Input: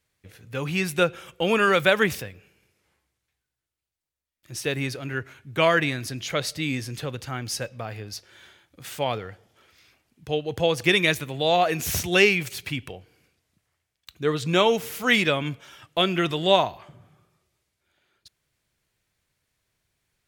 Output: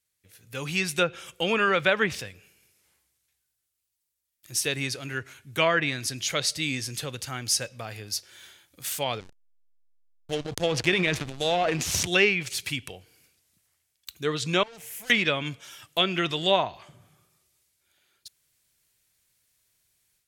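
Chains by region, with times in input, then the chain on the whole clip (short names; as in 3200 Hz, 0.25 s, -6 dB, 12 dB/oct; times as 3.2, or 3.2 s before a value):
9.2–12.07 bell 1400 Hz -3.5 dB 1.1 oct + transient shaper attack +1 dB, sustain +9 dB + backlash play -23.5 dBFS
14.63–15.1 fixed phaser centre 1200 Hz, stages 6 + compressor 3:1, threshold -27 dBFS + tube stage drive 42 dB, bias 0.6
whole clip: treble ducked by the level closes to 2400 Hz, closed at -16 dBFS; pre-emphasis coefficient 0.8; AGC gain up to 9.5 dB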